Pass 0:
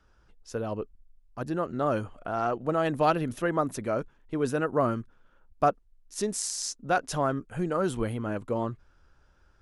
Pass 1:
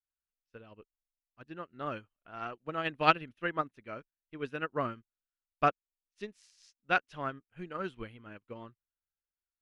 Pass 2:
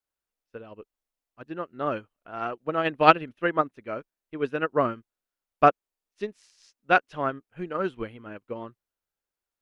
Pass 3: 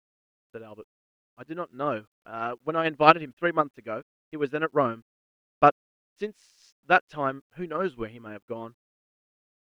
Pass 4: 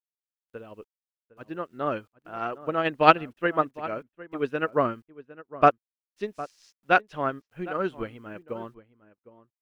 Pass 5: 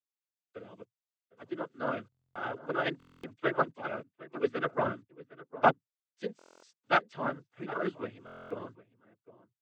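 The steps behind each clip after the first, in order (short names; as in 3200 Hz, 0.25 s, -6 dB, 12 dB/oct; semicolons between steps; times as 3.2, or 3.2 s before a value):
EQ curve 350 Hz 0 dB, 710 Hz -3 dB, 2700 Hz +13 dB, 7900 Hz -9 dB; upward expander 2.5:1, over -47 dBFS
bell 510 Hz +8 dB 2.9 oct; gain +3 dB
requantised 12-bit, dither none
outdoor echo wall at 130 m, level -17 dB
noise vocoder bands 16; stuck buffer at 2.1/2.98/6.37/8.25, samples 1024, times 10; gain -5 dB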